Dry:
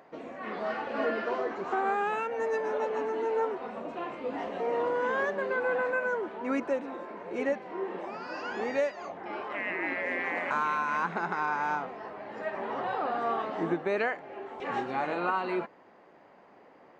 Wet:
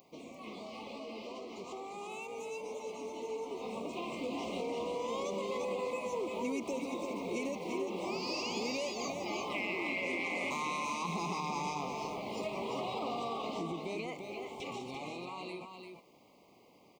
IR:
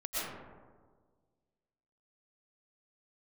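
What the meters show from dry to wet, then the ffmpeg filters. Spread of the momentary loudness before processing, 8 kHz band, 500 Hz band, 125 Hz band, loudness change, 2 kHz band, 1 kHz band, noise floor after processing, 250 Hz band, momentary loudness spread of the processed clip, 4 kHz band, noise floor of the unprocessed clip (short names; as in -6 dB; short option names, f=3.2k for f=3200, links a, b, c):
10 LU, n/a, -7.0 dB, +0.5 dB, -6.5 dB, -8.5 dB, -8.0 dB, -62 dBFS, -3.0 dB, 10 LU, +6.0 dB, -57 dBFS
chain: -af "asuperstop=centerf=1600:order=12:qfactor=1.8,aemphasis=mode=production:type=75kf,alimiter=level_in=1dB:limit=-24dB:level=0:latency=1:release=29,volume=-1dB,equalizer=f=820:t=o:w=2.7:g=-10.5,acompressor=threshold=-43dB:ratio=6,aecho=1:1:344:0.562,dynaudnorm=f=350:g=21:m=9dB"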